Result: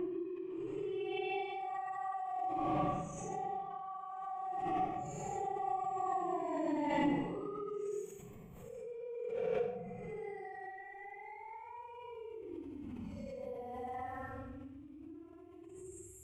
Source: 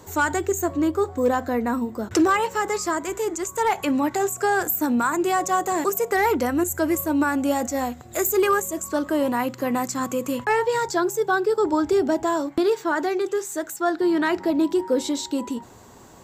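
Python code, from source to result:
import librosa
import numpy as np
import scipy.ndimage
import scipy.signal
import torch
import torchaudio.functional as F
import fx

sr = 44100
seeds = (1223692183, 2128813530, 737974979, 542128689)

p1 = fx.bin_expand(x, sr, power=2.0)
p2 = fx.doppler_pass(p1, sr, speed_mps=9, closest_m=3.8, pass_at_s=6.57)
p3 = fx.quant_companded(p2, sr, bits=4)
p4 = p2 + (p3 * librosa.db_to_amplitude(-10.5))
p5 = fx.over_compress(p4, sr, threshold_db=-49.0, ratio=-1.0)
p6 = fx.graphic_eq_15(p5, sr, hz=(100, 250, 1600, 4000), db=(-7, -10, -12, -7))
p7 = fx.env_lowpass_down(p6, sr, base_hz=2100.0, full_db=-45.0)
p8 = fx.paulstretch(p7, sr, seeds[0], factor=11.0, window_s=0.05, from_s=5.04)
p9 = fx.high_shelf_res(p8, sr, hz=3500.0, db=-11.0, q=1.5)
p10 = fx.room_shoebox(p9, sr, seeds[1], volume_m3=390.0, walls='mixed', distance_m=0.42)
p11 = fx.pre_swell(p10, sr, db_per_s=25.0)
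y = p11 * librosa.db_to_amplitude(15.0)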